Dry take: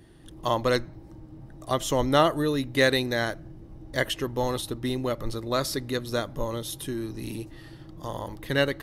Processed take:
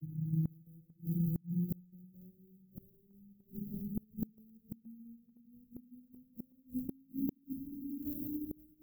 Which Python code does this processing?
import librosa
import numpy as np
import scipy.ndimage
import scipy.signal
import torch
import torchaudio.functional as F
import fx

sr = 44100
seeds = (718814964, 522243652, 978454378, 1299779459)

p1 = fx.vocoder_glide(x, sr, note=51, semitones=12)
p2 = fx.sample_hold(p1, sr, seeds[0], rate_hz=1600.0, jitter_pct=20)
p3 = p1 + (p2 * 10.0 ** (-9.0 / 20.0))
p4 = scipy.signal.sosfilt(scipy.signal.cheby2(4, 80, [900.0, 4300.0], 'bandstop', fs=sr, output='sos'), p3)
p5 = fx.low_shelf(p4, sr, hz=360.0, db=-6.5)
p6 = fx.echo_multitap(p5, sr, ms=(56, 94, 96, 195, 532, 604), db=(-11.5, -11.5, -20.0, -16.5, -19.0, -14.5))
p7 = fx.gate_flip(p6, sr, shuts_db=-40.0, range_db=-34)
y = p7 * 10.0 ** (16.5 / 20.0)